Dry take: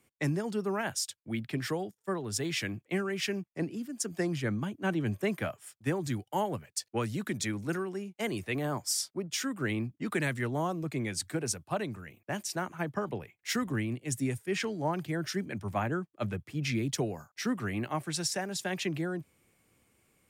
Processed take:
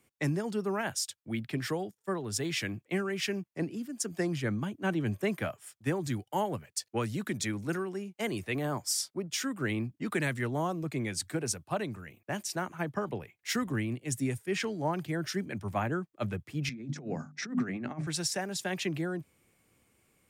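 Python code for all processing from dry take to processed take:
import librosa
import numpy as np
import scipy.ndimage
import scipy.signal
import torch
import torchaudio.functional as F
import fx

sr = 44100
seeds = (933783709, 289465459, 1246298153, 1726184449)

y = fx.chain(x, sr, fx.hum_notches(base_hz=50, count=6),
    fx.over_compress(threshold_db=-37.0, ratio=-0.5),
    fx.cabinet(low_hz=150.0, low_slope=12, high_hz=6200.0, hz=(150.0, 240.0, 1000.0, 3000.0, 4400.0), db=(9, 9, -5, -10, -6)), at=(16.69, 18.07))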